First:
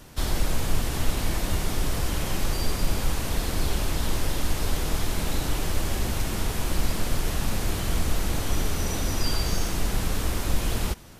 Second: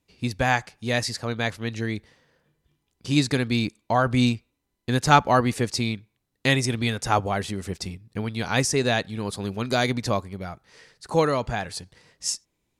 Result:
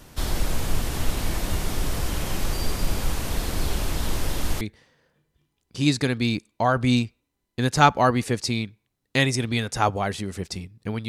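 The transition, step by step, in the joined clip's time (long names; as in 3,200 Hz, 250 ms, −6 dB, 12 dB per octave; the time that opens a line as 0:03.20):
first
0:04.61: continue with second from 0:01.91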